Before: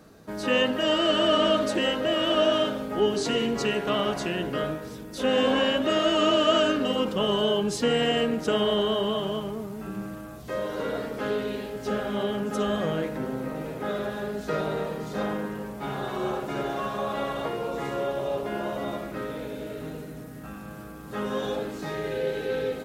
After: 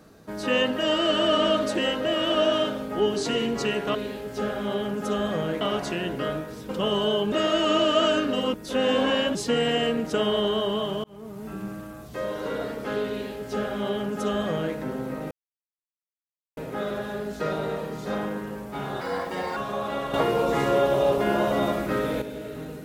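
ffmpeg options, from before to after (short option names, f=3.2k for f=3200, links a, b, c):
-filter_complex "[0:a]asplit=13[a][b][c][d][e][f][g][h][i][j][k][l][m];[a]atrim=end=3.952[n];[b]atrim=start=11.438:end=13.102[o];[c]atrim=start=3.948:end=5.032[p];[d]atrim=start=7.058:end=7.692[q];[e]atrim=start=5.838:end=7.062[r];[f]atrim=start=5.028:end=5.842[s];[g]atrim=start=7.688:end=9.38,asetpts=PTS-STARTPTS,afade=t=out:st=1.688:d=0.004:c=hsin[t];[h]atrim=start=9.38:end=13.65,asetpts=PTS-STARTPTS,afade=t=in:d=0.41,afade=t=out:st=4.266:d=0.004:c=hsin,apad=pad_dur=1.26[u];[i]atrim=start=13.65:end=16.094,asetpts=PTS-STARTPTS,afade=t=in:d=0.004:c=hsin[v];[j]atrim=start=16.09:end=16.82,asetpts=PTS-STARTPTS,asetrate=57771,aresample=44100[w];[k]atrim=start=16.816:end=17.392[x];[l]atrim=start=17.388:end=19.472,asetpts=PTS-STARTPTS,volume=7.5dB[y];[m]atrim=start=19.468[z];[n][o]acrossfade=d=0.004:c1=hsin:c2=hsin[aa];[aa][p]acrossfade=d=0.004:c1=hsin:c2=hsin[ab];[ab][q]acrossfade=d=0.004:c1=hsin:c2=hsin[ac];[ac][r]acrossfade=d=0.004:c1=hsin:c2=hsin[ad];[ad][s]acrossfade=d=0.004:c1=hsin:c2=hsin[ae];[t][u][v]concat=n=3:v=0:a=1[af];[ae][af]acrossfade=d=0.004:c1=hsin:c2=hsin[ag];[ag][w]acrossfade=d=0.004:c1=hsin:c2=hsin[ah];[ah][x]acrossfade=d=0.004:c1=hsin:c2=hsin[ai];[ai][y]acrossfade=d=0.004:c1=hsin:c2=hsin[aj];[aj][z]acrossfade=d=0.004:c1=hsin:c2=hsin"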